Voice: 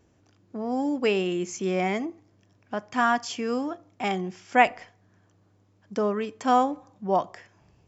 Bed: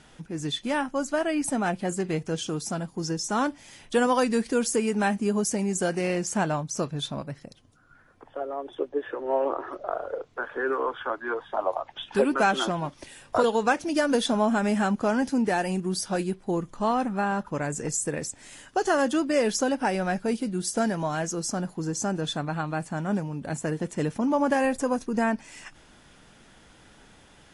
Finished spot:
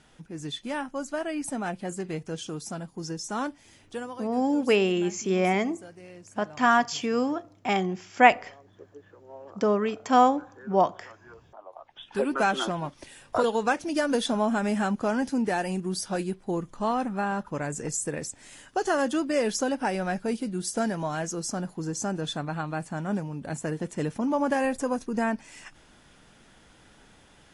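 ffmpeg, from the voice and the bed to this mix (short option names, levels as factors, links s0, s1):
-filter_complex "[0:a]adelay=3650,volume=1.26[s0];[1:a]volume=4.47,afade=t=out:st=3.48:d=0.71:silence=0.177828,afade=t=in:st=11.7:d=0.71:silence=0.125893[s1];[s0][s1]amix=inputs=2:normalize=0"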